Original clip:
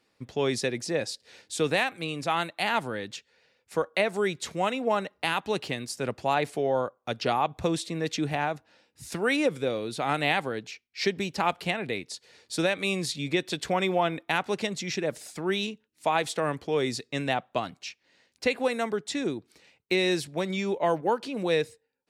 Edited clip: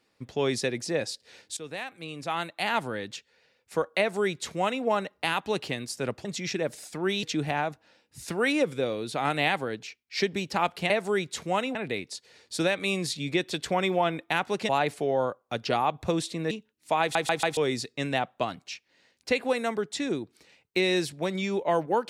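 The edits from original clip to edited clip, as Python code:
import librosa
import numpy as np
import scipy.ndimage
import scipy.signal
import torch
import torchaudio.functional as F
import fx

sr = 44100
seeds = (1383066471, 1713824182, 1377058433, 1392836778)

y = fx.edit(x, sr, fx.fade_in_from(start_s=1.57, length_s=1.25, floor_db=-17.0),
    fx.duplicate(start_s=3.99, length_s=0.85, to_s=11.74),
    fx.swap(start_s=6.25, length_s=1.82, other_s=14.68, other_length_s=0.98),
    fx.stutter_over(start_s=16.16, slice_s=0.14, count=4), tone=tone)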